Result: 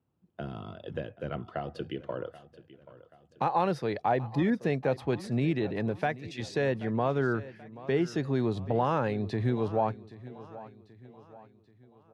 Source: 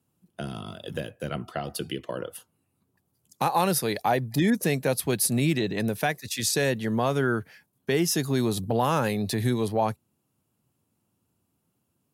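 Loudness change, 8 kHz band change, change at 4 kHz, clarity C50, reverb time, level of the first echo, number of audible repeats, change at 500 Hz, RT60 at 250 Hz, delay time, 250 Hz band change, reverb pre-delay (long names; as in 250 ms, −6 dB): −4.0 dB, below −20 dB, −12.5 dB, no reverb audible, no reverb audible, −17.5 dB, 3, −2.5 dB, no reverb audible, 782 ms, −4.0 dB, no reverb audible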